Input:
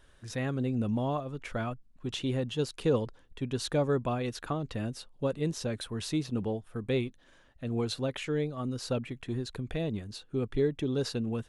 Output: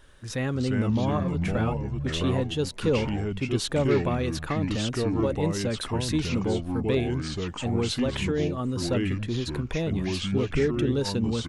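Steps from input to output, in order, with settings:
notch filter 690 Hz, Q 12
slap from a distant wall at 47 metres, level −30 dB
in parallel at −0.5 dB: brickwall limiter −27.5 dBFS, peak gain reduction 11 dB
on the sum: delay with pitch and tempo change per echo 256 ms, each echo −4 semitones, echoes 2

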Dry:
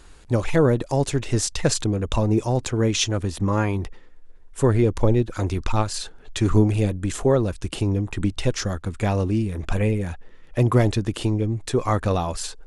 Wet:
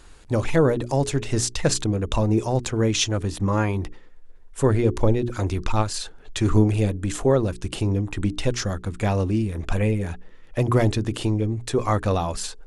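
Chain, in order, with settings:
mains-hum notches 60/120/180/240/300/360/420 Hz

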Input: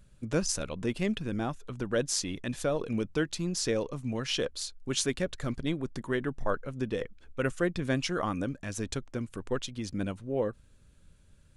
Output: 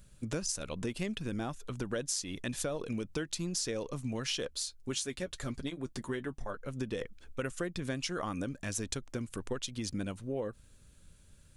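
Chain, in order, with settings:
high-shelf EQ 4,300 Hz +8.5 dB
downward compressor 6 to 1, threshold −32 dBFS, peak gain reduction 11.5 dB
0:04.50–0:06.57: notch comb filter 160 Hz

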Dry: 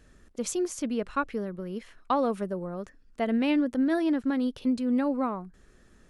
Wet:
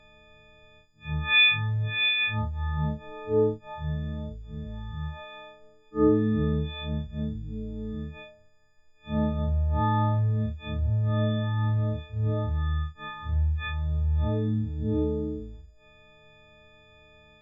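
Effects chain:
every partial snapped to a pitch grid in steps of 6 semitones
change of speed 0.35×

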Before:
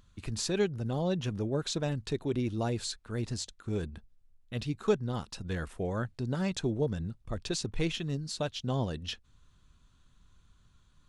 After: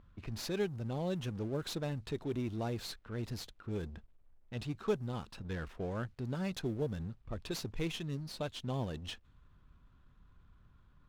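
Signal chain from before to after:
mu-law and A-law mismatch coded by mu
low-pass that shuts in the quiet parts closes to 1,700 Hz, open at −25 dBFS
windowed peak hold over 3 samples
level −6.5 dB

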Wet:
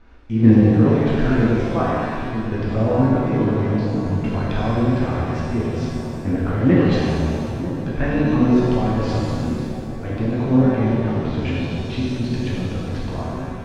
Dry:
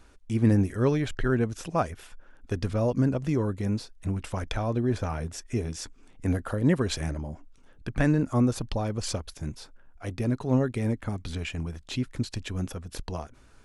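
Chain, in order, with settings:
in parallel at −1 dB: output level in coarse steps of 20 dB
on the sum: floating-point word with a short mantissa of 4 bits
high-frequency loss of the air 250 metres
feedback echo with a low-pass in the loop 946 ms, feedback 72%, low-pass 880 Hz, level −12 dB
reverb with rising layers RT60 1.9 s, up +7 semitones, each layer −8 dB, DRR −6.5 dB
level −1 dB

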